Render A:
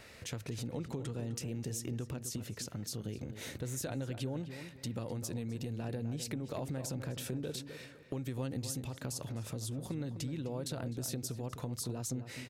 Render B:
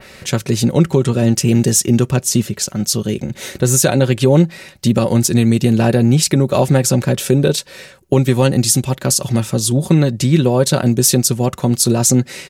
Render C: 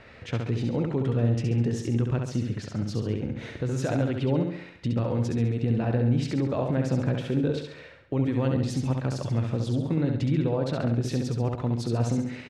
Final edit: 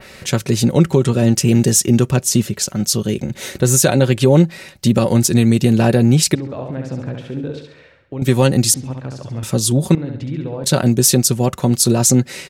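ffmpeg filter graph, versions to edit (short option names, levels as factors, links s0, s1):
-filter_complex "[2:a]asplit=3[s0][s1][s2];[1:a]asplit=4[s3][s4][s5][s6];[s3]atrim=end=6.352[s7];[s0]atrim=start=6.348:end=8.222[s8];[s4]atrim=start=8.218:end=8.742[s9];[s1]atrim=start=8.738:end=9.432[s10];[s5]atrim=start=9.428:end=9.952[s11];[s2]atrim=start=9.948:end=10.642[s12];[s6]atrim=start=10.638[s13];[s7][s8]acrossfade=d=0.004:c1=hsin:c2=hsin[s14];[s14][s9]acrossfade=d=0.004:c1=hsin:c2=hsin[s15];[s15][s10]acrossfade=d=0.004:c1=hsin:c2=hsin[s16];[s16][s11]acrossfade=d=0.004:c1=hsin:c2=hsin[s17];[s17][s12]acrossfade=d=0.004:c1=hsin:c2=hsin[s18];[s18][s13]acrossfade=d=0.004:c1=hsin:c2=hsin"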